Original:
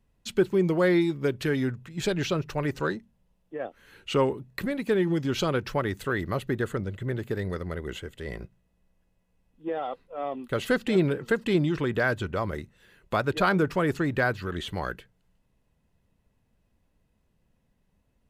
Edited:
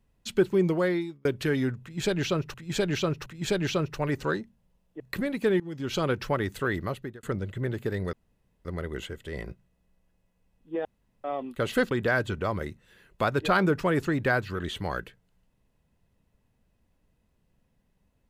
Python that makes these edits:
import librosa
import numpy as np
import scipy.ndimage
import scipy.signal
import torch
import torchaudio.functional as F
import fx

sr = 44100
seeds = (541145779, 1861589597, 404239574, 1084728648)

y = fx.edit(x, sr, fx.fade_out_span(start_s=0.66, length_s=0.59),
    fx.repeat(start_s=1.82, length_s=0.72, count=3),
    fx.cut(start_s=3.56, length_s=0.89),
    fx.fade_in_from(start_s=5.05, length_s=0.47, floor_db=-21.0),
    fx.fade_out_span(start_s=6.22, length_s=0.46),
    fx.insert_room_tone(at_s=7.58, length_s=0.52),
    fx.room_tone_fill(start_s=9.78, length_s=0.39),
    fx.cut(start_s=10.84, length_s=0.99), tone=tone)